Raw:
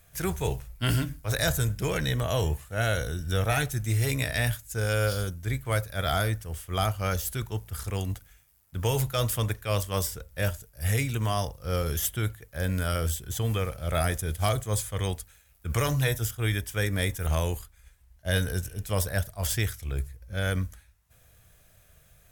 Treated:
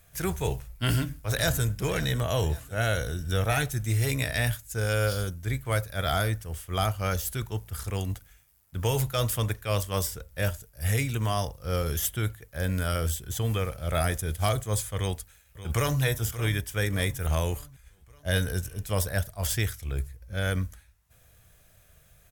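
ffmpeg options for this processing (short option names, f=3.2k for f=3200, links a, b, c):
-filter_complex "[0:a]asplit=2[a][b];[b]afade=t=in:st=0.6:d=0.01,afade=t=out:st=1.69:d=0.01,aecho=0:1:550|1100|1650|2200:0.16788|0.0755462|0.0339958|0.0152981[c];[a][c]amix=inputs=2:normalize=0,asplit=2[d][e];[e]afade=t=in:st=14.97:d=0.01,afade=t=out:st=16.02:d=0.01,aecho=0:1:580|1160|1740|2320|2900:0.211349|0.105674|0.0528372|0.0264186|0.0132093[f];[d][f]amix=inputs=2:normalize=0"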